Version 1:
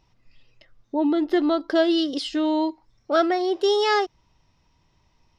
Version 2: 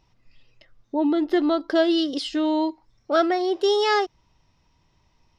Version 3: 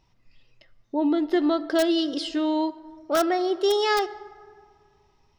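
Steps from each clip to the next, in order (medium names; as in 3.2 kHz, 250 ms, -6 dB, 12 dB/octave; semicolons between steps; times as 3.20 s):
no audible change
plate-style reverb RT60 2.1 s, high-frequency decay 0.45×, DRR 15.5 dB; in parallel at -5 dB: integer overflow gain 11 dB; on the sum: trim -5.5 dB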